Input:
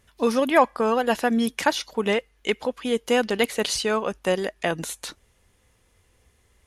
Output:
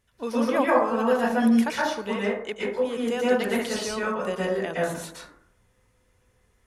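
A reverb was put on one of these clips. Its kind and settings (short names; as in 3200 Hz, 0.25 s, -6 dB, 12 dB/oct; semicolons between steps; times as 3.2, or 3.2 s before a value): plate-style reverb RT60 0.68 s, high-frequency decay 0.35×, pre-delay 0.105 s, DRR -7 dB; gain -10 dB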